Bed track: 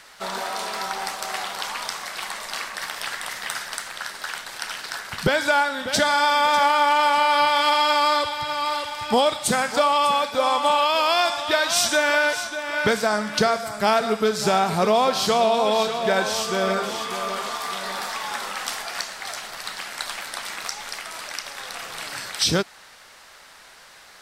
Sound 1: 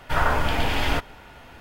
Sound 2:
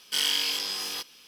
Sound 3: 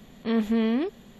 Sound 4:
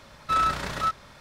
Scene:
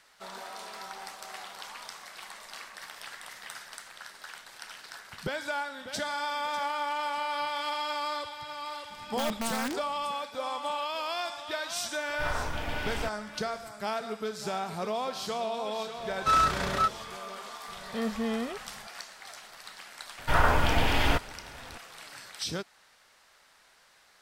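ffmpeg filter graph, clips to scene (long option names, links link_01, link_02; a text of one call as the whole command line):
ffmpeg -i bed.wav -i cue0.wav -i cue1.wav -i cue2.wav -i cue3.wav -filter_complex "[3:a]asplit=2[link_01][link_02];[1:a]asplit=2[link_03][link_04];[0:a]volume=-13.5dB[link_05];[link_01]aeval=exprs='(mod(8.41*val(0)+1,2)-1)/8.41':channel_layout=same[link_06];[link_02]aecho=1:1:1.6:0.79[link_07];[link_06]atrim=end=1.19,asetpts=PTS-STARTPTS,volume=-8dB,afade=type=in:duration=0.004:curve=hsin,afade=type=out:start_time=1.186:duration=0.004:curve=hsin,adelay=392490S[link_08];[link_03]atrim=end=1.6,asetpts=PTS-STARTPTS,volume=-11.5dB,afade=type=in:duration=0.004:curve=hsin,afade=type=out:start_time=1.596:duration=0.004:curve=hsin,adelay=12090[link_09];[4:a]atrim=end=1.2,asetpts=PTS-STARTPTS,afade=type=in:duration=0.004:curve=hsin,afade=type=out:start_time=1.196:duration=0.004:curve=hsin,adelay=15970[link_10];[link_07]atrim=end=1.19,asetpts=PTS-STARTPTS,volume=-6.5dB,afade=type=in:duration=0.004:curve=hsin,afade=type=out:start_time=1.186:duration=0.004:curve=hsin,adelay=17680[link_11];[link_04]atrim=end=1.6,asetpts=PTS-STARTPTS,volume=-1.5dB,afade=type=in:duration=0.004:curve=hsin,afade=type=out:start_time=1.596:duration=0.004:curve=hsin,adelay=20180[link_12];[link_05][link_08][link_09][link_10][link_11][link_12]amix=inputs=6:normalize=0" out.wav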